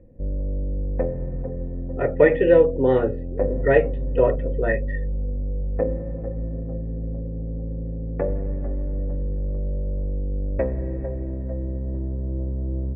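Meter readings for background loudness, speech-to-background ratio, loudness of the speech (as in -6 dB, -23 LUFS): -29.0 LUFS, 8.5 dB, -20.5 LUFS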